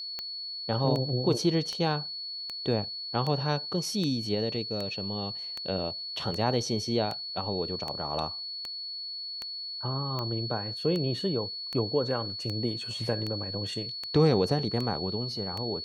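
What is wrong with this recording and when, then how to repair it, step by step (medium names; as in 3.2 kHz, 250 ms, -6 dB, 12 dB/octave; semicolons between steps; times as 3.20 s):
tick 78 rpm -20 dBFS
whine 4.4 kHz -35 dBFS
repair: de-click; band-stop 4.4 kHz, Q 30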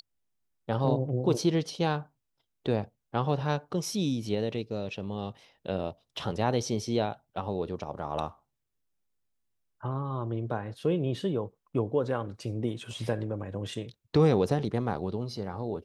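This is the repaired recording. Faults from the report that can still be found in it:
nothing left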